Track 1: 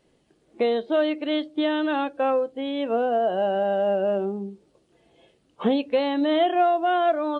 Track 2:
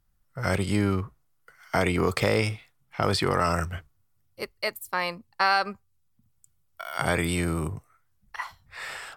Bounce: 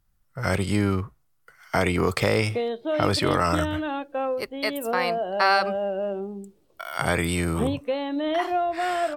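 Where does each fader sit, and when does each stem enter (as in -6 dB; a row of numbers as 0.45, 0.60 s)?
-4.5, +1.5 dB; 1.95, 0.00 s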